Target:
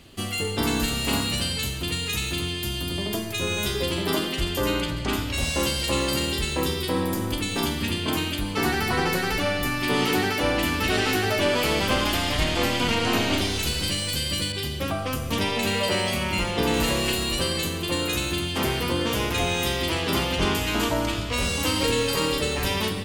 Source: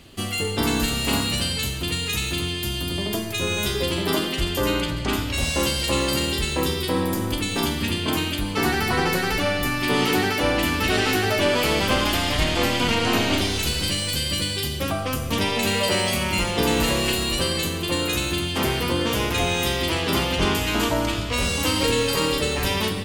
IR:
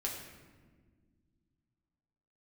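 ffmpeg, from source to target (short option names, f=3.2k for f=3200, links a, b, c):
-filter_complex "[0:a]asettb=1/sr,asplit=3[a][b][c];[a]atrim=end=14.524[d];[b]atrim=start=14.52:end=16.74,asetpts=PTS-STARTPTS,afade=t=in:d=0.004:c=qsin,afade=t=out:st=2.216:d=0.004:c=qsin,adynamicequalizer=threshold=0.0158:dfrequency=4700:dqfactor=0.7:tfrequency=4700:tqfactor=0.7:attack=5:release=100:ratio=0.375:range=2.5:mode=cutabove:tftype=highshelf[e];[c]atrim=start=16.736[f];[d][e]acrossfade=d=0.004:c1=hsin:c2=qsin[g];[g][f]acrossfade=d=0.004:c1=qsin:c2=hsin,volume=-2dB"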